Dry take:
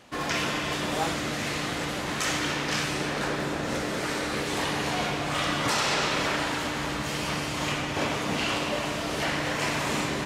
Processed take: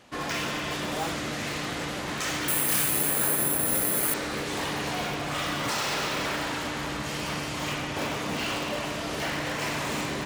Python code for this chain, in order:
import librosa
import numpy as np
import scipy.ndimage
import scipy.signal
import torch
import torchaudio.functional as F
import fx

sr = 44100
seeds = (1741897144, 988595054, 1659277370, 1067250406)

p1 = (np.mod(10.0 ** (21.5 / 20.0) * x + 1.0, 2.0) - 1.0) / 10.0 ** (21.5 / 20.0)
p2 = x + F.gain(torch.from_numpy(p1), -10.0).numpy()
p3 = fx.resample_bad(p2, sr, factor=4, down='filtered', up='zero_stuff', at=(2.48, 4.14))
y = F.gain(torch.from_numpy(p3), -4.0).numpy()